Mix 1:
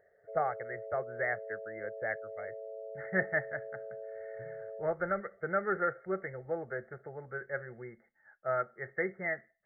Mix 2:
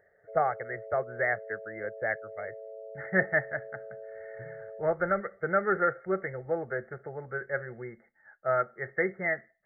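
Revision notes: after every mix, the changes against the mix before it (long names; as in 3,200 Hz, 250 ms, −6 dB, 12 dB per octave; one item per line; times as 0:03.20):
speech +5.0 dB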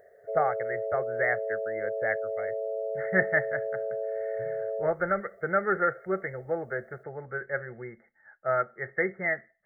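background +11.5 dB
master: add high-shelf EQ 4,400 Hz +10 dB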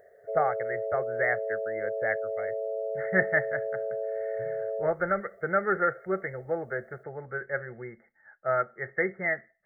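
nothing changed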